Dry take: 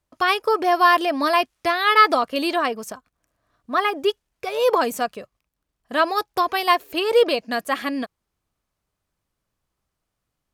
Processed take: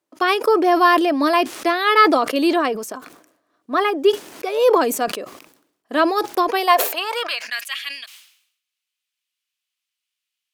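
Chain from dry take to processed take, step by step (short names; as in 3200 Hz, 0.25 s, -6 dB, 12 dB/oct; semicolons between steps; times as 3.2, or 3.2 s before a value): high-pass sweep 310 Hz -> 2800 Hz, 6.42–7.7; sustainer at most 84 dB/s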